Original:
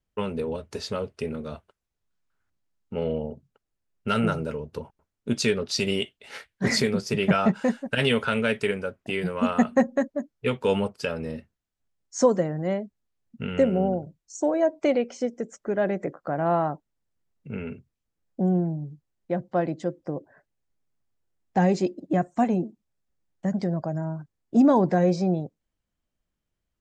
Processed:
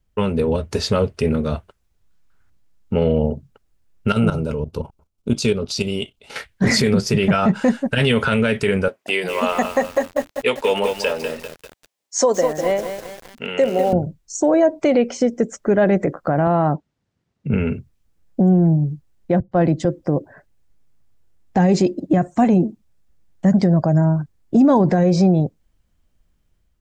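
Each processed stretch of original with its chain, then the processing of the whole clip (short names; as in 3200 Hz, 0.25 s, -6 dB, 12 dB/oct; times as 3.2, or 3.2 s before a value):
4.12–6.36 bell 1800 Hz -12.5 dB 0.37 oct + level quantiser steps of 12 dB
8.88–13.93 HPF 530 Hz + bell 1400 Hz -6.5 dB 0.52 oct + lo-fi delay 0.197 s, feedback 55%, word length 7-bit, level -8 dB
16.47–17.54 BPF 150–5500 Hz + low shelf 190 Hz +8.5 dB
19.4–19.85 low shelf 170 Hz +5 dB + three-band expander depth 70%
whole clip: AGC gain up to 4 dB; low shelf 120 Hz +10.5 dB; limiter -14.5 dBFS; gain +7 dB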